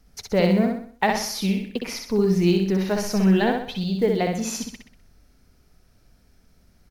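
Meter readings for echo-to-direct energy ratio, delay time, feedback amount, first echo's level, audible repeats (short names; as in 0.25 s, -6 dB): -3.0 dB, 63 ms, 43%, -4.0 dB, 5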